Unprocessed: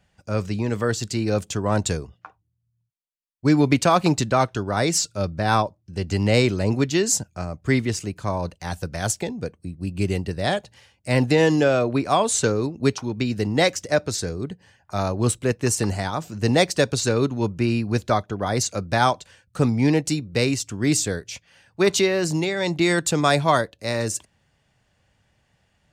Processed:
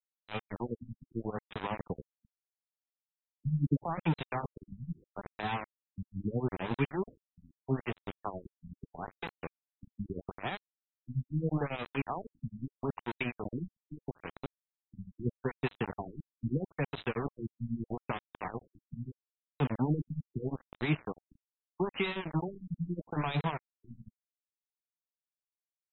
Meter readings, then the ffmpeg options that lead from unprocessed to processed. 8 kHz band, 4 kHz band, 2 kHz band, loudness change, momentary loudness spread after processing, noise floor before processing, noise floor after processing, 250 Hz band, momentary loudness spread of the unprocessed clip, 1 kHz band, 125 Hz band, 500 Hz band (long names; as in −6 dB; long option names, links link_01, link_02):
below −40 dB, −20.0 dB, −15.5 dB, −14.5 dB, 14 LU, −68 dBFS, below −85 dBFS, −14.0 dB, 11 LU, −15.0 dB, −12.0 dB, −17.5 dB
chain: -filter_complex "[0:a]equalizer=frequency=880:width_type=o:width=0.74:gain=12,acrossover=split=330|3400[link_01][link_02][link_03];[link_01]tremolo=f=11:d=0.83[link_04];[link_02]acompressor=threshold=-24dB:ratio=16[link_05];[link_03]flanger=delay=4.7:depth=8.2:regen=46:speed=0.77:shape=sinusoidal[link_06];[link_04][link_05][link_06]amix=inputs=3:normalize=0,highpass=150,equalizer=frequency=150:width_type=q:width=4:gain=8,equalizer=frequency=310:width_type=q:width=4:gain=-4,equalizer=frequency=570:width_type=q:width=4:gain=-10,equalizer=frequency=1400:width_type=q:width=4:gain=-7,equalizer=frequency=2400:width_type=q:width=4:gain=8,equalizer=frequency=4800:width_type=q:width=4:gain=5,lowpass=frequency=5400:width=0.5412,lowpass=frequency=5400:width=1.3066,aeval=exprs='val(0)*gte(abs(val(0)),0.0596)':channel_layout=same,afftfilt=real='re*lt(b*sr/1024,240*pow(4100/240,0.5+0.5*sin(2*PI*0.78*pts/sr)))':imag='im*lt(b*sr/1024,240*pow(4100/240,0.5+0.5*sin(2*PI*0.78*pts/sr)))':win_size=1024:overlap=0.75,volume=-6.5dB"